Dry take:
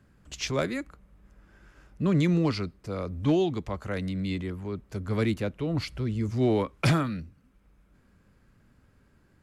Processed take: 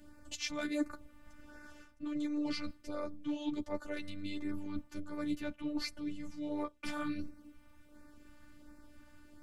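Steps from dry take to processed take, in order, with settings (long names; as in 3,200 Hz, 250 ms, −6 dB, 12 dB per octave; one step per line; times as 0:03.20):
reversed playback
downward compressor 10 to 1, threshold −39 dBFS, peak gain reduction 20.5 dB
reversed playback
multi-voice chorus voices 4, 0.25 Hz, delay 10 ms, depth 3.2 ms
phases set to zero 295 Hz
auto-filter notch sine 1.4 Hz 370–3,200 Hz
level +11.5 dB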